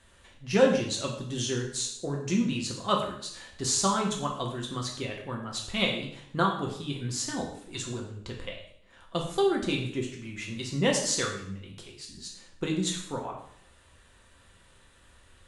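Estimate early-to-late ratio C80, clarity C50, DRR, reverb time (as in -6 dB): 9.0 dB, 6.0 dB, -1.0 dB, 0.65 s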